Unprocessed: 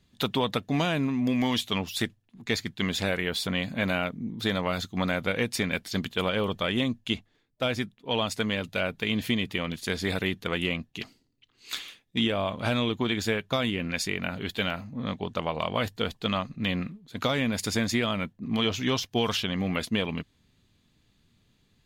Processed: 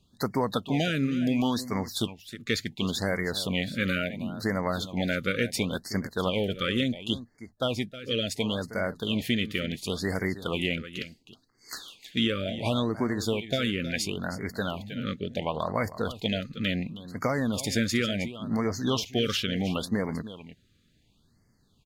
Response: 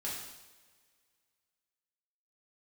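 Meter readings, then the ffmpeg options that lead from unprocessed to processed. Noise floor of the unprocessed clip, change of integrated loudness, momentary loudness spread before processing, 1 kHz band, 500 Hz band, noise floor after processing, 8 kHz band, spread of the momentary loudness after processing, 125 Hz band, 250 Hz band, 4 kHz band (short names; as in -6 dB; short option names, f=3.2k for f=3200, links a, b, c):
-68 dBFS, -0.5 dB, 7 LU, -2.0 dB, 0.0 dB, -66 dBFS, 0.0 dB, 7 LU, 0.0 dB, 0.0 dB, -1.5 dB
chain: -af "aecho=1:1:316:0.211,afftfilt=real='re*(1-between(b*sr/1024,800*pow(3200/800,0.5+0.5*sin(2*PI*0.71*pts/sr))/1.41,800*pow(3200/800,0.5+0.5*sin(2*PI*0.71*pts/sr))*1.41))':imag='im*(1-between(b*sr/1024,800*pow(3200/800,0.5+0.5*sin(2*PI*0.71*pts/sr))/1.41,800*pow(3200/800,0.5+0.5*sin(2*PI*0.71*pts/sr))*1.41))':win_size=1024:overlap=0.75"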